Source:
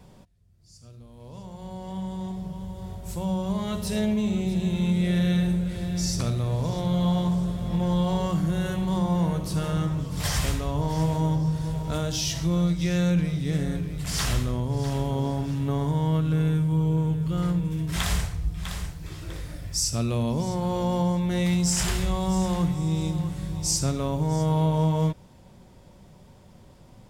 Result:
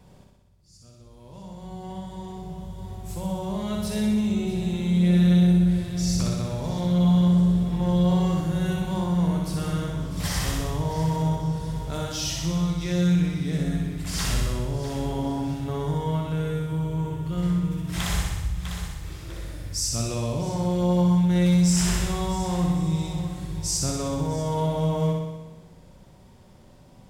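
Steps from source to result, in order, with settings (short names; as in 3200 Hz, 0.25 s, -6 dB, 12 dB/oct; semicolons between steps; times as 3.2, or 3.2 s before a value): flutter echo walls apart 10.6 m, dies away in 1.1 s; gain -2.5 dB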